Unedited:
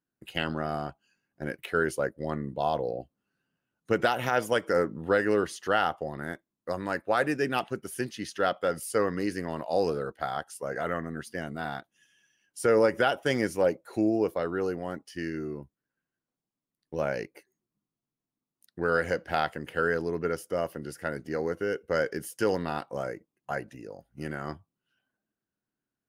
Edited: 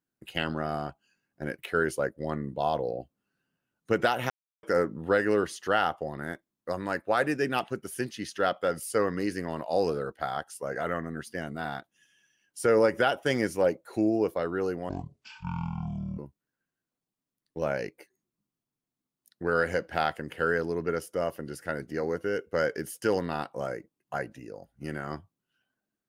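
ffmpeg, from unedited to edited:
-filter_complex "[0:a]asplit=5[a][b][c][d][e];[a]atrim=end=4.3,asetpts=PTS-STARTPTS,afade=t=out:st=4.296:d=0.004:c=hsin[f];[b]atrim=start=4.3:end=4.63,asetpts=PTS-STARTPTS,volume=0[g];[c]atrim=start=4.63:end=14.894,asetpts=PTS-STARTPTS,afade=t=in:d=0.004:c=hsin[h];[d]atrim=start=14.89:end=15.55,asetpts=PTS-STARTPTS,asetrate=22491,aresample=44100[i];[e]atrim=start=15.546[j];[f][g][h]concat=n=3:v=0:a=1[k];[k][i]acrossfade=d=0.004:c1=hsin:c2=hsin[l];[l][j]acrossfade=d=0.004:c1=hsin:c2=hsin"

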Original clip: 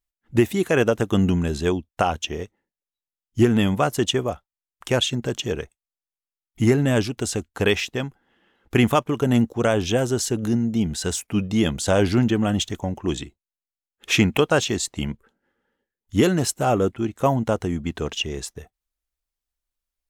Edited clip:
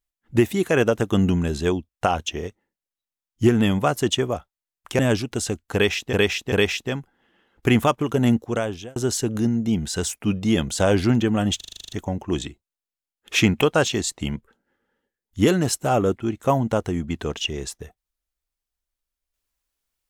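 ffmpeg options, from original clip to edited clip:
-filter_complex "[0:a]asplit=15[a][b][c][d][e][f][g][h][i][j][k][l][m][n][o];[a]atrim=end=1.912[p];[b]atrim=start=1.888:end=1.912[q];[c]atrim=start=1.888:end=4.952[r];[d]atrim=start=6.848:end=7.992[s];[e]atrim=start=7.598:end=7.992[t];[f]atrim=start=7.598:end=10.04,asetpts=PTS-STARTPTS,afade=t=out:st=1.842:d=0.6[u];[g]atrim=start=10.04:end=12.692,asetpts=PTS-STARTPTS,afade=t=in:d=0.004:c=hsin[v];[h]atrim=start=12.648:end=12.692[w];[i]atrim=start=12.648:end=12.692[x];[j]atrim=start=12.648:end=12.692[y];[k]atrim=start=12.648:end=12.692[z];[l]atrim=start=12.648:end=12.692[aa];[m]atrim=start=12.648:end=12.692[ab];[n]atrim=start=12.648:end=12.692[ac];[o]atrim=start=12.648[ad];[p][q]acrossfade=d=0.004:c1=hsin:c2=hsin[ae];[ae][r]acrossfade=d=0.004:c1=hsin:c2=hsin[af];[af][s]acrossfade=d=0.004:c1=hsin:c2=hsin[ag];[ag][t]acrossfade=d=0.004:c1=hsin:c2=hsin[ah];[u][v]concat=n=2:v=0:a=1[ai];[ah][ai]acrossfade=d=0.004:c1=hsin:c2=hsin[aj];[aj][w]acrossfade=d=0.004:c1=hsin:c2=hsin[ak];[ak][x]acrossfade=d=0.004:c1=hsin:c2=hsin[al];[al][y]acrossfade=d=0.004:c1=hsin:c2=hsin[am];[am][z]acrossfade=d=0.004:c1=hsin:c2=hsin[an];[an][aa]acrossfade=d=0.004:c1=hsin:c2=hsin[ao];[ao][ab]acrossfade=d=0.004:c1=hsin:c2=hsin[ap];[ap][ac]acrossfade=d=0.004:c1=hsin:c2=hsin[aq];[aq][ad]acrossfade=d=0.004:c1=hsin:c2=hsin"

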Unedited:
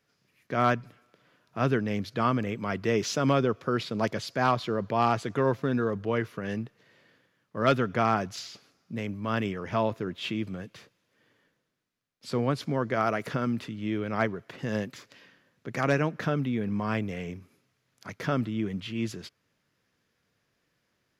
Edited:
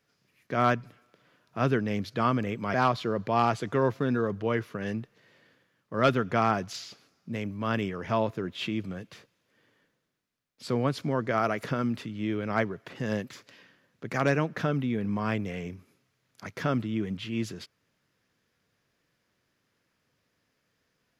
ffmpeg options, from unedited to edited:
-filter_complex "[0:a]asplit=2[a][b];[a]atrim=end=2.742[c];[b]atrim=start=4.368[d];[c][d]acrossfade=d=0.004:c1=hsin:c2=hsin"

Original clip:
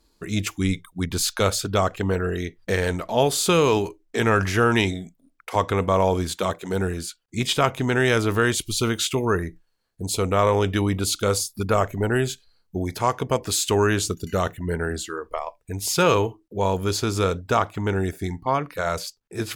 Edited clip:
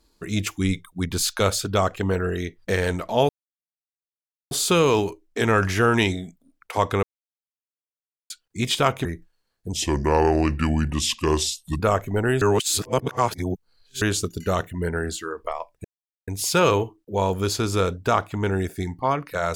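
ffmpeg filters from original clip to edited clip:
-filter_complex "[0:a]asplit=10[a][b][c][d][e][f][g][h][i][j];[a]atrim=end=3.29,asetpts=PTS-STARTPTS,afade=t=out:st=3.286:d=0.004:c=hsin,apad=pad_dur=1.22[k];[b]atrim=start=3.29:end=5.81,asetpts=PTS-STARTPTS,afade=t=in:d=0.004:c=hsin,afade=t=out:st=2.516:d=0.004:c=hsin[l];[c]atrim=start=5.81:end=7.08,asetpts=PTS-STARTPTS,volume=0[m];[d]atrim=start=7.08:end=7.832,asetpts=PTS-STARTPTS,afade=t=in:d=0.004:c=hsin[n];[e]atrim=start=9.388:end=10.074[o];[f]atrim=start=10.07:end=11.66,asetpts=PTS-STARTPTS,asetrate=33957,aresample=44100[p];[g]atrim=start=11.656:end=12.282[q];[h]atrim=start=12.278:end=13.882,asetpts=PTS-STARTPTS,areverse[r];[i]atrim=start=13.878:end=15.71,asetpts=PTS-STARTPTS,afade=t=out:st=1.828:d=0.004:c=hsin,apad=pad_dur=0.43[s];[j]atrim=start=15.71,asetpts=PTS-STARTPTS,afade=t=in:d=0.004:c=hsin[t];[k][l][m][n]concat=n=4:v=0:a=1[u];[u][o]acrossfade=d=0.004:c1=hsin:c2=hsin[v];[v][p]acrossfade=d=0.004:c1=hsin:c2=hsin[w];[w][q]acrossfade=d=0.004:c1=hsin:c2=hsin[x];[x][r]acrossfade=d=0.004:c1=hsin:c2=hsin[y];[s][t]concat=n=2:v=0:a=1[z];[y][z]acrossfade=d=0.004:c1=hsin:c2=hsin"

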